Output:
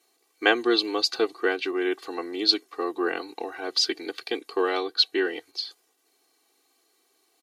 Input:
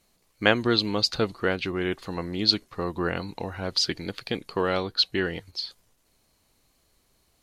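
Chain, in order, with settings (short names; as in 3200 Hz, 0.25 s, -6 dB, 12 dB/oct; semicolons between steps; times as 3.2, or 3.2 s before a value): HPF 260 Hz 24 dB/oct; comb 2.6 ms, depth 95%; gain -2 dB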